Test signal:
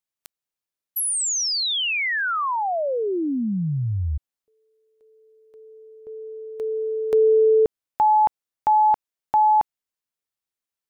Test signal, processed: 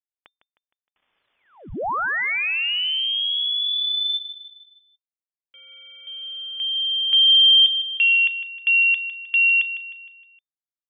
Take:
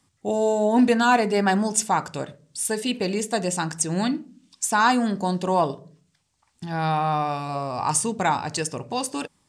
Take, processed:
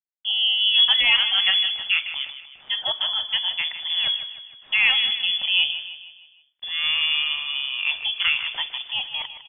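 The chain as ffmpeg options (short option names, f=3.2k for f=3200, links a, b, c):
-filter_complex "[0:a]aeval=exprs='val(0)*gte(abs(val(0)),0.00531)':c=same,asplit=2[a][b];[b]aecho=0:1:155|310|465|620|775:0.266|0.128|0.0613|0.0294|0.0141[c];[a][c]amix=inputs=2:normalize=0,lowpass=f=3.1k:t=q:w=0.5098,lowpass=f=3.1k:t=q:w=0.6013,lowpass=f=3.1k:t=q:w=0.9,lowpass=f=3.1k:t=q:w=2.563,afreqshift=-3600"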